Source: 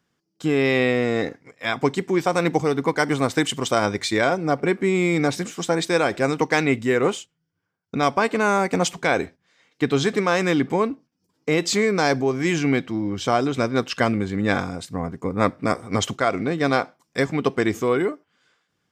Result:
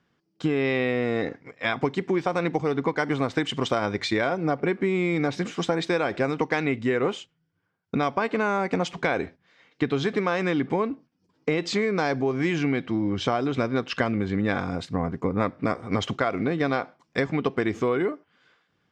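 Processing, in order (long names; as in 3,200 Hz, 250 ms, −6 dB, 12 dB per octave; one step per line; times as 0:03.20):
downward compressor 5 to 1, threshold −24 dBFS, peak gain reduction 10 dB
low-pass filter 3,900 Hz 12 dB per octave
level +3 dB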